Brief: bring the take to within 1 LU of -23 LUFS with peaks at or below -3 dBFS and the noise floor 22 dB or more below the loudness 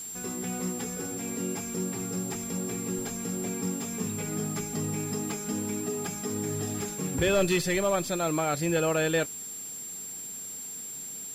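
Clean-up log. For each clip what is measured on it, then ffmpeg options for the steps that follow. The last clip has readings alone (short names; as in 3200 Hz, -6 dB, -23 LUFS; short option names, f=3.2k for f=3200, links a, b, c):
steady tone 7400 Hz; tone level -37 dBFS; noise floor -39 dBFS; noise floor target -53 dBFS; loudness -30.5 LUFS; peak -15.0 dBFS; loudness target -23.0 LUFS
-> -af "bandreject=f=7.4k:w=30"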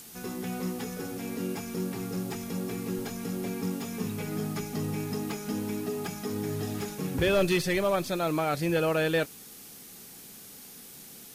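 steady tone none; noise floor -48 dBFS; noise floor target -53 dBFS
-> -af "afftdn=nr=6:nf=-48"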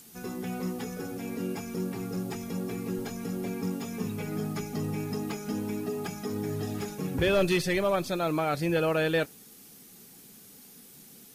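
noise floor -52 dBFS; noise floor target -53 dBFS
-> -af "afftdn=nr=6:nf=-52"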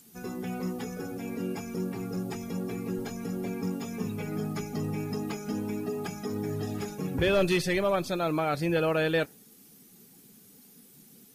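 noise floor -56 dBFS; loudness -31.0 LUFS; peak -16.0 dBFS; loudness target -23.0 LUFS
-> -af "volume=8dB"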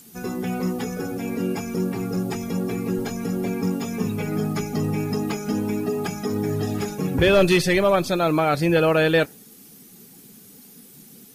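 loudness -23.0 LUFS; peak -8.0 dBFS; noise floor -48 dBFS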